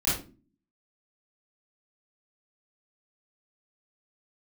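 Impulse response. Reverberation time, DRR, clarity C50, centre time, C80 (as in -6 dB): 0.35 s, -11.5 dB, 2.0 dB, 46 ms, 9.5 dB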